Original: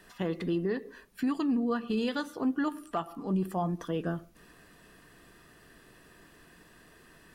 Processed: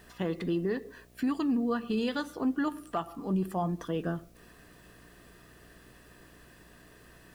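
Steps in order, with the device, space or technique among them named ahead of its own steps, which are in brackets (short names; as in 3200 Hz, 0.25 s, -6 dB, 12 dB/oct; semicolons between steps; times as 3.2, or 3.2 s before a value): video cassette with head-switching buzz (buzz 60 Hz, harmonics 12, -60 dBFS -4 dB/oct; white noise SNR 36 dB)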